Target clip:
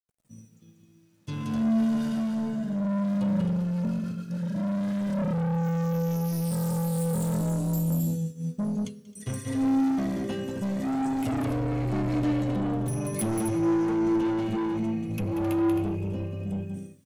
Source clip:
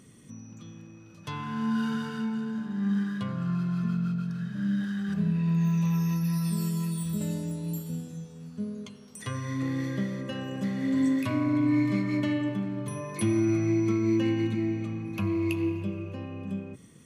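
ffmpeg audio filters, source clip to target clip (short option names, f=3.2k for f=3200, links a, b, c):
-filter_complex "[0:a]equalizer=f=125:t=o:w=1:g=8,equalizer=f=250:t=o:w=1:g=6,equalizer=f=500:t=o:w=1:g=3,equalizer=f=1k:t=o:w=1:g=-9,equalizer=f=2k:t=o:w=1:g=-3,equalizer=f=4k:t=o:w=1:g=-5,asplit=2[a][b];[b]alimiter=limit=-20dB:level=0:latency=1,volume=-1.5dB[c];[a][c]amix=inputs=2:normalize=0,highshelf=f=3k:g=9,bandreject=f=131.3:t=h:w=4,bandreject=f=262.6:t=h:w=4,asplit=2[d][e];[e]aecho=0:1:186.6|265.3:0.562|0.398[f];[d][f]amix=inputs=2:normalize=0,agate=range=-33dB:threshold=-22dB:ratio=3:detection=peak,dynaudnorm=f=280:g=21:m=5dB,acrusher=bits=10:mix=0:aa=0.000001,asoftclip=type=tanh:threshold=-20dB,flanger=delay=1.1:depth=5.3:regen=64:speed=0.18:shape=triangular"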